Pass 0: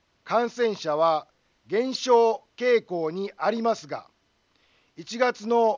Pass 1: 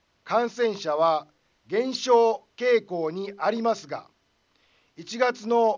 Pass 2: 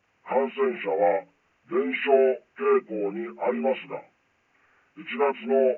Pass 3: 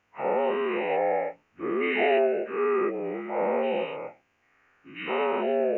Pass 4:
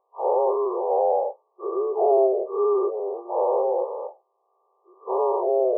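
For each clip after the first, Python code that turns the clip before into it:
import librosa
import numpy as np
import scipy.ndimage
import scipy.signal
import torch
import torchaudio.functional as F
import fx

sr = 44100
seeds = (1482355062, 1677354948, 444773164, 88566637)

y1 = fx.hum_notches(x, sr, base_hz=50, count=8)
y2 = fx.partial_stretch(y1, sr, pct=75)
y2 = fx.high_shelf(y2, sr, hz=3100.0, db=11.5)
y3 = fx.spec_dilate(y2, sr, span_ms=240)
y3 = y3 * librosa.db_to_amplitude(-7.5)
y4 = fx.brickwall_bandpass(y3, sr, low_hz=360.0, high_hz=1200.0)
y4 = y4 * librosa.db_to_amplitude(4.5)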